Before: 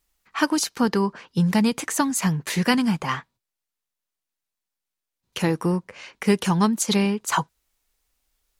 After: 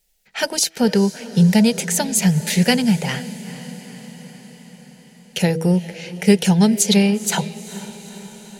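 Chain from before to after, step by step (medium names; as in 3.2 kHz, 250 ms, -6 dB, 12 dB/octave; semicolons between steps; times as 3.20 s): static phaser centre 300 Hz, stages 6; de-hum 162.4 Hz, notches 4; on a send: echo that smears into a reverb 458 ms, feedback 63%, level -16 dB; on the sum: trim +7.5 dB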